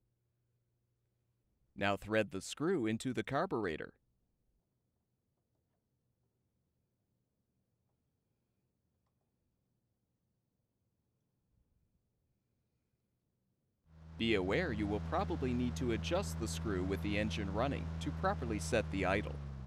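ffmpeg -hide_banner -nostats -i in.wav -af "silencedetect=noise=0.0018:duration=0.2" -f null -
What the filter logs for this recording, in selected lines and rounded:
silence_start: 0.00
silence_end: 1.76 | silence_duration: 1.76
silence_start: 3.90
silence_end: 13.94 | silence_duration: 10.04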